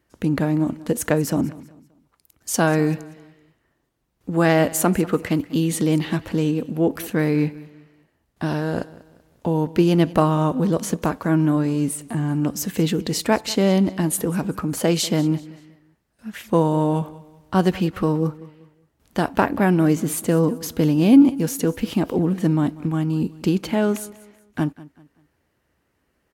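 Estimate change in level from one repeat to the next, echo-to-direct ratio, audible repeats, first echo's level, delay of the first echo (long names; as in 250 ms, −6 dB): −9.0 dB, −19.0 dB, 2, −19.5 dB, 192 ms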